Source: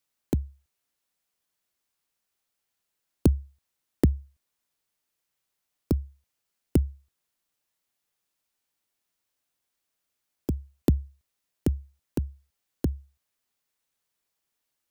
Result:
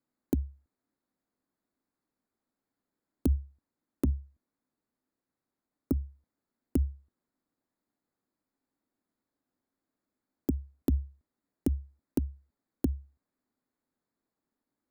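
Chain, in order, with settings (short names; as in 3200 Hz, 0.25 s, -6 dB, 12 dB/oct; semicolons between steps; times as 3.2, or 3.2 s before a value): Wiener smoothing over 15 samples; 3.36–6.01 tube stage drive 16 dB, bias 0.35; bell 260 Hz +14 dB 0.92 oct; limiter -17.5 dBFS, peak gain reduction 18 dB; high shelf 8000 Hz +10 dB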